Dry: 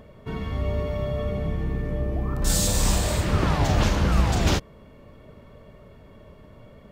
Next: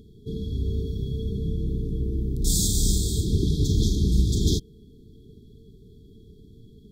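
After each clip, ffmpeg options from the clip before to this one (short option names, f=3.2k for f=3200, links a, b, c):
-af "afftfilt=real='re*(1-between(b*sr/4096,460,3200))':imag='im*(1-between(b*sr/4096,460,3200))':win_size=4096:overlap=0.75"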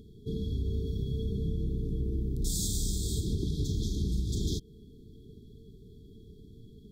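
-af "acompressor=threshold=-25dB:ratio=6,volume=-2dB"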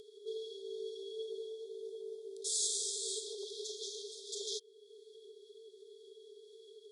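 -af "afftfilt=real='re*between(b*sr/4096,380,11000)':imag='im*between(b*sr/4096,380,11000)':win_size=4096:overlap=0.75,acompressor=mode=upward:threshold=-49dB:ratio=2.5,volume=1dB"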